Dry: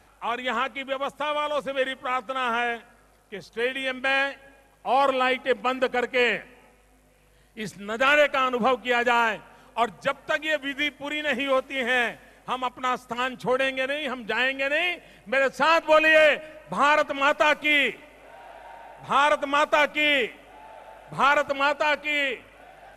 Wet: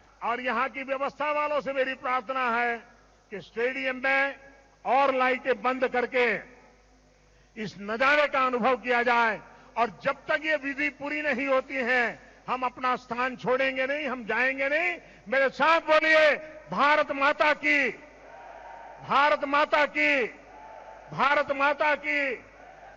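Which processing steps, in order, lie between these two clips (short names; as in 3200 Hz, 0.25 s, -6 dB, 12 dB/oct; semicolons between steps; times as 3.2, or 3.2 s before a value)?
nonlinear frequency compression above 1900 Hz 1.5:1; core saturation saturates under 1500 Hz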